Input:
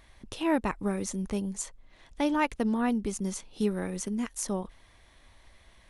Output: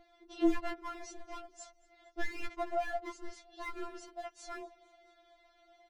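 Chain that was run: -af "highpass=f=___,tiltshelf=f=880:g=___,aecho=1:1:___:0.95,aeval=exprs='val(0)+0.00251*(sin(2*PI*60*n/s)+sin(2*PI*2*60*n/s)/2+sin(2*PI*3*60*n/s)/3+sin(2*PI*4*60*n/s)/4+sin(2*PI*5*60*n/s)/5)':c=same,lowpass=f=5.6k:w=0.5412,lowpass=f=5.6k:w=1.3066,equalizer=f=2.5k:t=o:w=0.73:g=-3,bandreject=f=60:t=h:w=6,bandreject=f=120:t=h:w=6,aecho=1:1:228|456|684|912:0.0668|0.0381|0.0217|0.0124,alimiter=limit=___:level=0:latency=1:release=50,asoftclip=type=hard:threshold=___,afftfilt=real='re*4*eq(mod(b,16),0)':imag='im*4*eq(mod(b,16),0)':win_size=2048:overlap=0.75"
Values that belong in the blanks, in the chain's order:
93, 8.5, 7.2, -9dB, -23dB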